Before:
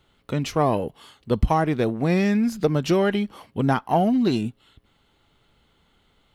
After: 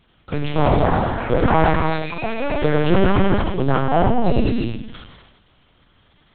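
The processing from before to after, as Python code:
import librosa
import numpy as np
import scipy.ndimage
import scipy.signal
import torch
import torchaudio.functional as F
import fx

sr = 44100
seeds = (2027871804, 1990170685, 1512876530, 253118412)

p1 = fx.clip_asym(x, sr, top_db=-22.5, bottom_db=-12.0)
p2 = x + (p1 * librosa.db_to_amplitude(-5.0))
p3 = fx.bandpass_q(p2, sr, hz=2600.0, q=5.5, at=(1.72, 2.59), fade=0.02)
p4 = p3 + fx.echo_single(p3, sr, ms=99, db=-10.0, dry=0)
p5 = fx.echo_pitch(p4, sr, ms=472, semitones=7, count=2, db_per_echo=-6.0)
p6 = fx.rev_gated(p5, sr, seeds[0], gate_ms=360, shape='flat', drr_db=-1.5)
p7 = fx.lpc_vocoder(p6, sr, seeds[1], excitation='pitch_kept', order=8)
p8 = fx.sustainer(p7, sr, db_per_s=46.0)
y = p8 * librosa.db_to_amplitude(-1.5)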